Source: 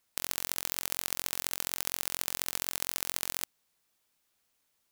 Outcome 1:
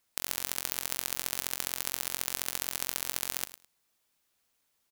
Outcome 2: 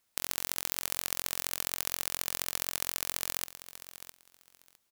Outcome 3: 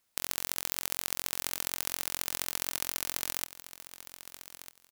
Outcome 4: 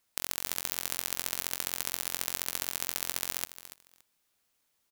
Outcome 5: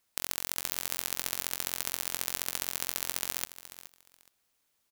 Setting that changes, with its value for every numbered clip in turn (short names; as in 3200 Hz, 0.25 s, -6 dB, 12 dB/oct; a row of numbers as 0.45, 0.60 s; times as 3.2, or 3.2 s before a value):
feedback echo, time: 0.105, 0.658, 1.248, 0.285, 0.421 s